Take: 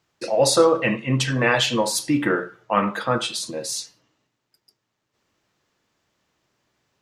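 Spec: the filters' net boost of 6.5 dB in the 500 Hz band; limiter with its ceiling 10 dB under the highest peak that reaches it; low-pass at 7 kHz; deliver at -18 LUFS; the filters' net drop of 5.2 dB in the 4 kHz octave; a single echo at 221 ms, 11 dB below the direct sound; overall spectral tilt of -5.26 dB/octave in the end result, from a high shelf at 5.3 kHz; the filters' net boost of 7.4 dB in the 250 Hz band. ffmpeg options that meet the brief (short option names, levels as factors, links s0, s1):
-af "lowpass=7000,equalizer=f=250:t=o:g=7.5,equalizer=f=500:t=o:g=5.5,equalizer=f=4000:t=o:g=-4,highshelf=f=5300:g=-5.5,alimiter=limit=0.398:level=0:latency=1,aecho=1:1:221:0.282,volume=1.19"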